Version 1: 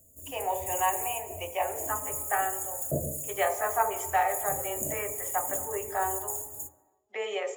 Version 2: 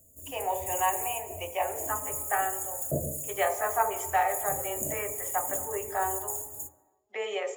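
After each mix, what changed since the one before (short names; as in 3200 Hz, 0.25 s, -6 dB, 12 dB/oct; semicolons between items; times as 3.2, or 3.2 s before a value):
none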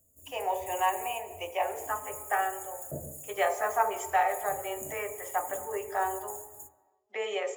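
background -8.5 dB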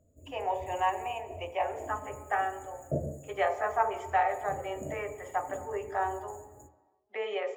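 background +8.0 dB; master: add air absorption 210 m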